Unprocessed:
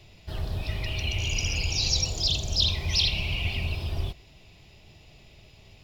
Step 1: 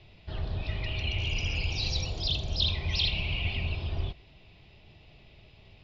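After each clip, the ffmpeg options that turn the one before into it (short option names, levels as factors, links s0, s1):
-af "lowpass=f=4200:w=0.5412,lowpass=f=4200:w=1.3066,volume=0.794"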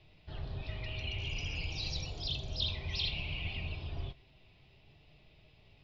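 -af "flanger=delay=6.4:depth=1.6:regen=67:speed=0.56:shape=sinusoidal,volume=0.75"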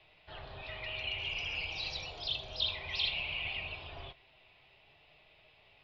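-filter_complex "[0:a]acrossover=split=520 4000:gain=0.141 1 0.112[s0][s1][s2];[s0][s1][s2]amix=inputs=3:normalize=0,volume=2"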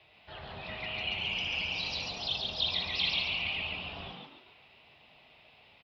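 -filter_complex "[0:a]highpass=54,asplit=2[s0][s1];[s1]asplit=5[s2][s3][s4][s5][s6];[s2]adelay=139,afreqshift=99,volume=0.708[s7];[s3]adelay=278,afreqshift=198,volume=0.275[s8];[s4]adelay=417,afreqshift=297,volume=0.107[s9];[s5]adelay=556,afreqshift=396,volume=0.0422[s10];[s6]adelay=695,afreqshift=495,volume=0.0164[s11];[s7][s8][s9][s10][s11]amix=inputs=5:normalize=0[s12];[s0][s12]amix=inputs=2:normalize=0,volume=1.26"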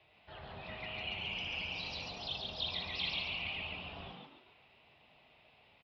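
-af "highshelf=f=3300:g=-7,volume=0.668"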